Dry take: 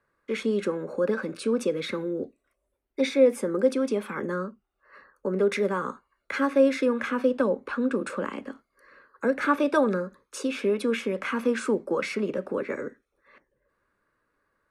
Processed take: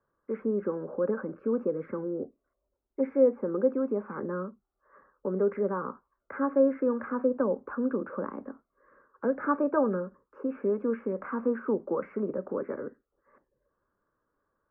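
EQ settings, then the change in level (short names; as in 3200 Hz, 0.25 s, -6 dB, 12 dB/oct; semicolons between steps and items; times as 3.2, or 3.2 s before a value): inverse Chebyshev low-pass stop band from 3500 Hz, stop band 50 dB; -3.0 dB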